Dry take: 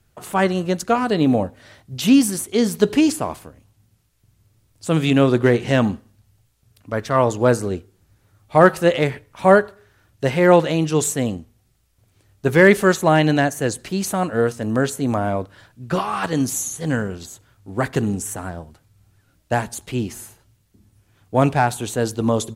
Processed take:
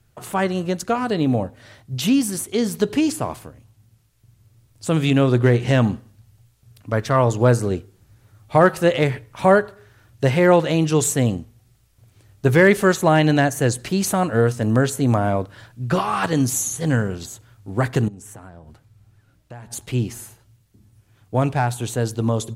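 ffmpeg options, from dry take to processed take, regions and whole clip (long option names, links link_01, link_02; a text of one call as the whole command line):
ffmpeg -i in.wav -filter_complex "[0:a]asettb=1/sr,asplit=3[link_01][link_02][link_03];[link_01]atrim=end=18.084[link_04];[link_02]atrim=start=18.08:end=19.71,asetpts=PTS-STARTPTS,afade=type=in:duration=0.004:curve=qsin,afade=type=out:start_time=1.626:duration=0.004:curve=qsin,highshelf=frequency=4500:gain=-6,acompressor=threshold=-39dB:ratio=5:attack=3.2:release=140:knee=1:detection=peak[link_05];[link_03]atrim=start=19.706[link_06];[link_04][link_05]acrossfade=duration=0.004:curve1=hsin:curve2=qsin[link_07];[link_07][link_06]acrossfade=duration=0.004:curve1=qsin:curve2=hsin,acompressor=threshold=-22dB:ratio=1.5,equalizer=frequency=120:width=4.5:gain=8,dynaudnorm=framelen=330:gausssize=31:maxgain=5dB" out.wav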